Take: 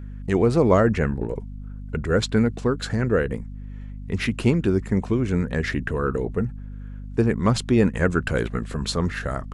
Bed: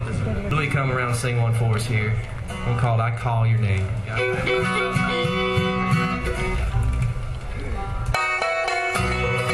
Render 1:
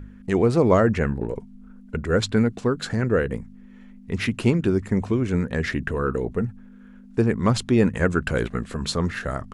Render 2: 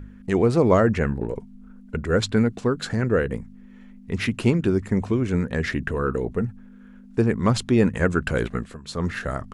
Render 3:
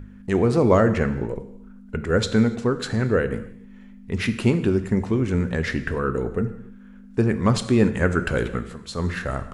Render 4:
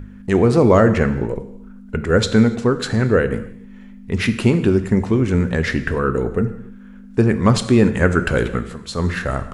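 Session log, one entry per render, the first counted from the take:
hum removal 50 Hz, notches 3
0:08.57–0:09.08: duck −17.5 dB, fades 0.25 s
reverb whose tail is shaped and stops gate 320 ms falling, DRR 9.5 dB
level +5 dB; brickwall limiter −2 dBFS, peak gain reduction 2.5 dB

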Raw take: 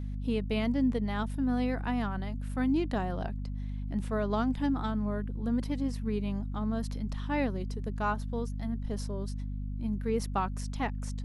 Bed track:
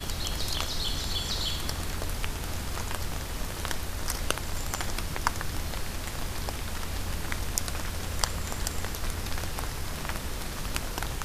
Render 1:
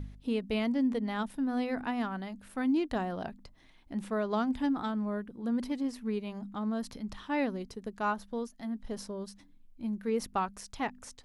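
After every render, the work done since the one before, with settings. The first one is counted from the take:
hum removal 50 Hz, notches 5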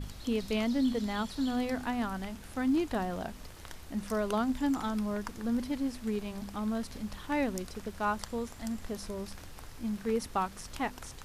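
mix in bed track −15 dB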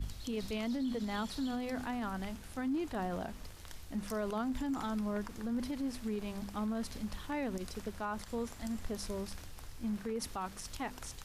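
brickwall limiter −29 dBFS, peak gain reduction 11.5 dB
multiband upward and downward expander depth 40%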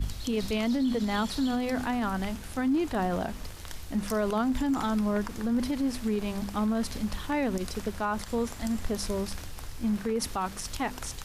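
level +8.5 dB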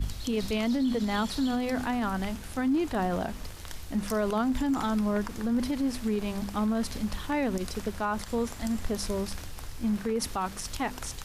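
no processing that can be heard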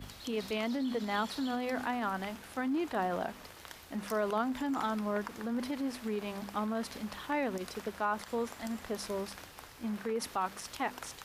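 high-pass filter 540 Hz 6 dB per octave
parametric band 8,000 Hz −8 dB 2.3 octaves

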